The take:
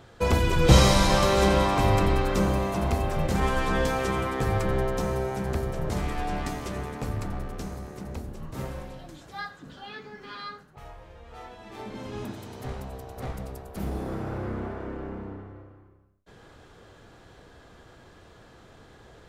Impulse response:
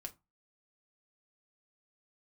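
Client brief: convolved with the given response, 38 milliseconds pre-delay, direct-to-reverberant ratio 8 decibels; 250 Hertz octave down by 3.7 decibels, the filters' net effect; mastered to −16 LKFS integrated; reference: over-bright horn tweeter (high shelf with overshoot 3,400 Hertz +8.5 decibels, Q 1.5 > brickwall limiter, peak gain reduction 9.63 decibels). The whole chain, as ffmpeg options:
-filter_complex "[0:a]equalizer=frequency=250:width_type=o:gain=-5.5,asplit=2[link_01][link_02];[1:a]atrim=start_sample=2205,adelay=38[link_03];[link_02][link_03]afir=irnorm=-1:irlink=0,volume=-4dB[link_04];[link_01][link_04]amix=inputs=2:normalize=0,highshelf=frequency=3400:width_type=q:width=1.5:gain=8.5,volume=11.5dB,alimiter=limit=-1dB:level=0:latency=1"

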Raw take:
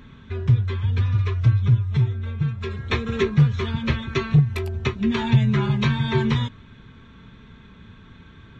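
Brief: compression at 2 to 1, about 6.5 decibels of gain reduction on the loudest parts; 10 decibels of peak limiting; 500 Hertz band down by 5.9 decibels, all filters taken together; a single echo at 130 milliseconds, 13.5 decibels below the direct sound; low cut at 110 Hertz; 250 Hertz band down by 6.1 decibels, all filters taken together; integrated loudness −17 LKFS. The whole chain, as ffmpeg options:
ffmpeg -i in.wav -af "highpass=110,equalizer=frequency=250:width_type=o:gain=-8.5,equalizer=frequency=500:width_type=o:gain=-4,acompressor=threshold=-27dB:ratio=2,alimiter=level_in=0.5dB:limit=-24dB:level=0:latency=1,volume=-0.5dB,aecho=1:1:130:0.211,volume=16dB" out.wav

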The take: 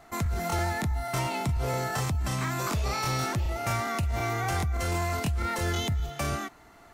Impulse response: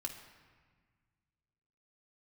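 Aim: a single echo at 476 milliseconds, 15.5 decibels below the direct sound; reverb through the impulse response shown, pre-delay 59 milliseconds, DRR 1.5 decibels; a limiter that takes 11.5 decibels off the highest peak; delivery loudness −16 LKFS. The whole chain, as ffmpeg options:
-filter_complex "[0:a]alimiter=level_in=5dB:limit=-24dB:level=0:latency=1,volume=-5dB,aecho=1:1:476:0.168,asplit=2[link_01][link_02];[1:a]atrim=start_sample=2205,adelay=59[link_03];[link_02][link_03]afir=irnorm=-1:irlink=0,volume=-0.5dB[link_04];[link_01][link_04]amix=inputs=2:normalize=0,volume=18dB"

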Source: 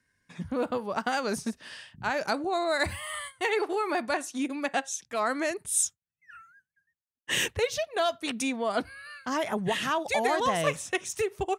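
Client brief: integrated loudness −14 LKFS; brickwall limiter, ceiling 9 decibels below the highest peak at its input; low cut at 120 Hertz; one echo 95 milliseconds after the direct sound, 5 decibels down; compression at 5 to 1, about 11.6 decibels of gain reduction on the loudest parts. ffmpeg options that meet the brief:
ffmpeg -i in.wav -af "highpass=120,acompressor=threshold=-35dB:ratio=5,alimiter=level_in=7dB:limit=-24dB:level=0:latency=1,volume=-7dB,aecho=1:1:95:0.562,volume=25.5dB" out.wav

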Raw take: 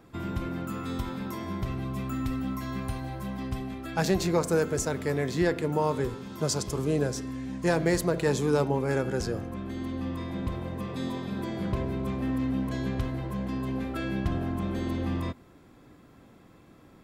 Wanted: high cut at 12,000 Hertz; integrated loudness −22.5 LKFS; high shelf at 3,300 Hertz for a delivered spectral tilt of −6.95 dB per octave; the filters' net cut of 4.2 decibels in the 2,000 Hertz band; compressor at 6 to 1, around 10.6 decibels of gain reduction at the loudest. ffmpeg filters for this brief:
ffmpeg -i in.wav -af "lowpass=12000,equalizer=frequency=2000:width_type=o:gain=-4.5,highshelf=frequency=3300:gain=-3.5,acompressor=threshold=-32dB:ratio=6,volume=14dB" out.wav

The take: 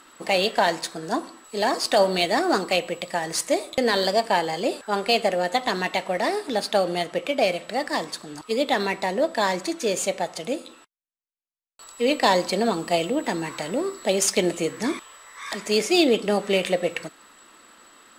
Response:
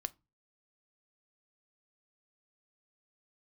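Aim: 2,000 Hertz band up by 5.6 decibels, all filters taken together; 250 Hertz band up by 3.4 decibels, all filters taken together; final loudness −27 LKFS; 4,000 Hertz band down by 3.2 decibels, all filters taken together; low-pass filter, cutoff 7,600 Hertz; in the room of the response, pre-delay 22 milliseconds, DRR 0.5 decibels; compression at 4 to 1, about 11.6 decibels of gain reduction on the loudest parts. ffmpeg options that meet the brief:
-filter_complex "[0:a]lowpass=7600,equalizer=frequency=250:width_type=o:gain=4.5,equalizer=frequency=2000:width_type=o:gain=8.5,equalizer=frequency=4000:width_type=o:gain=-7,acompressor=threshold=-27dB:ratio=4,asplit=2[link_01][link_02];[1:a]atrim=start_sample=2205,adelay=22[link_03];[link_02][link_03]afir=irnorm=-1:irlink=0,volume=1dB[link_04];[link_01][link_04]amix=inputs=2:normalize=0,volume=1dB"

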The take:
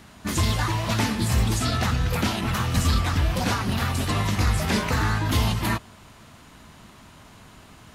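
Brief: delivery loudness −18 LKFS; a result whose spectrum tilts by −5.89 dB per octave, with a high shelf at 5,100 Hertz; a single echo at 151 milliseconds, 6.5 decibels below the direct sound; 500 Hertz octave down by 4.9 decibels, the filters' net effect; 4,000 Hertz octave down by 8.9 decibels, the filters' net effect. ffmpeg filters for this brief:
ffmpeg -i in.wav -af "equalizer=frequency=500:width_type=o:gain=-6.5,equalizer=frequency=4000:width_type=o:gain=-9,highshelf=frequency=5100:gain=-6,aecho=1:1:151:0.473,volume=6.5dB" out.wav

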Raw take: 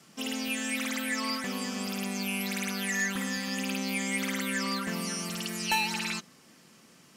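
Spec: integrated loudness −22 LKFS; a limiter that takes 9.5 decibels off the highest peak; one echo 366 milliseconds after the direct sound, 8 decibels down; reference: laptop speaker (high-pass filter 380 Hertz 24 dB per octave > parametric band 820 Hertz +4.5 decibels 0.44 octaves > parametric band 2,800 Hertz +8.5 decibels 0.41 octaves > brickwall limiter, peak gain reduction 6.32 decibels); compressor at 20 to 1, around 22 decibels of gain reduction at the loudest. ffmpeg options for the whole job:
ffmpeg -i in.wav -af "acompressor=threshold=-45dB:ratio=20,alimiter=level_in=19.5dB:limit=-24dB:level=0:latency=1,volume=-19.5dB,highpass=frequency=380:width=0.5412,highpass=frequency=380:width=1.3066,equalizer=frequency=820:width_type=o:width=0.44:gain=4.5,equalizer=frequency=2800:width_type=o:width=0.41:gain=8.5,aecho=1:1:366:0.398,volume=29.5dB,alimiter=limit=-13.5dB:level=0:latency=1" out.wav

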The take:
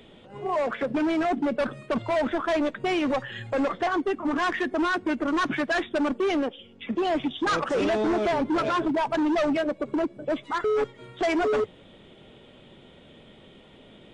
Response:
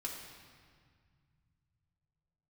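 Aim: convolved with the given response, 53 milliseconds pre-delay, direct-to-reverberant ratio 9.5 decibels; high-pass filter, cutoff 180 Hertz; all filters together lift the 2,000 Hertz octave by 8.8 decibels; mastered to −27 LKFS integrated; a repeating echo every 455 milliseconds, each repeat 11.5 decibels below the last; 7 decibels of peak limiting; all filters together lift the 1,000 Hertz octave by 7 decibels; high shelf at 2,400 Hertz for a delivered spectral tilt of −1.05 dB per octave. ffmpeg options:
-filter_complex "[0:a]highpass=180,equalizer=frequency=1000:width_type=o:gain=6,equalizer=frequency=2000:width_type=o:gain=5.5,highshelf=frequency=2400:gain=8,alimiter=limit=-14.5dB:level=0:latency=1,aecho=1:1:455|910|1365:0.266|0.0718|0.0194,asplit=2[link_01][link_02];[1:a]atrim=start_sample=2205,adelay=53[link_03];[link_02][link_03]afir=irnorm=-1:irlink=0,volume=-9.5dB[link_04];[link_01][link_04]amix=inputs=2:normalize=0,volume=-3.5dB"

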